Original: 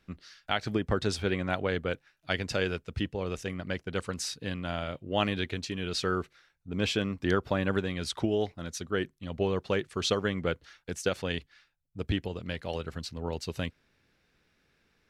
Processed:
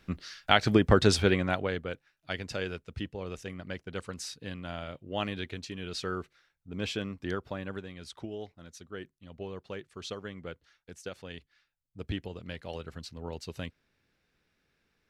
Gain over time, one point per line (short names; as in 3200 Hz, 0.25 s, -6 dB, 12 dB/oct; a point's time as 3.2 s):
1.16 s +7 dB
1.88 s -5 dB
7.05 s -5 dB
7.91 s -11.5 dB
11.29 s -11.5 dB
12.08 s -5 dB